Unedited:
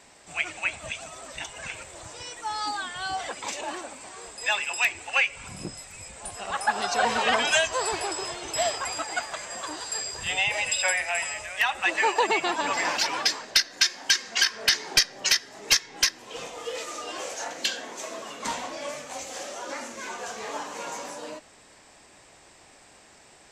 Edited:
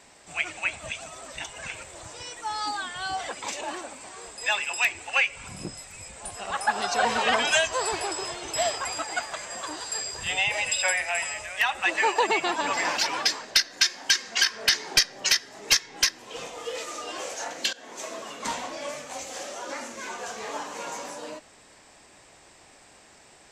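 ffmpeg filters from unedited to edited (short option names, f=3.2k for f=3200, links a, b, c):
-filter_complex "[0:a]asplit=2[a][b];[a]atrim=end=17.73,asetpts=PTS-STARTPTS,afade=t=out:st=17.726:d=0.004:c=hsin:silence=0.11885[c];[b]atrim=start=17.73,asetpts=PTS-STARTPTS,afade=t=in:d=0.28:silence=0.11885[d];[c][d]concat=n=2:v=0:a=1"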